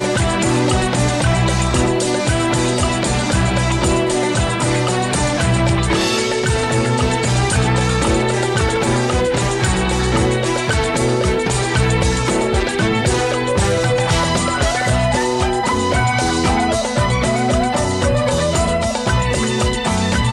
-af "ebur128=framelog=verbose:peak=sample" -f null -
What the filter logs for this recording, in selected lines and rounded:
Integrated loudness:
  I:         -16.6 LUFS
  Threshold: -26.5 LUFS
Loudness range:
  LRA:         0.5 LU
  Threshold: -36.5 LUFS
  LRA low:   -16.8 LUFS
  LRA high:  -16.3 LUFS
Sample peak:
  Peak:       -2.9 dBFS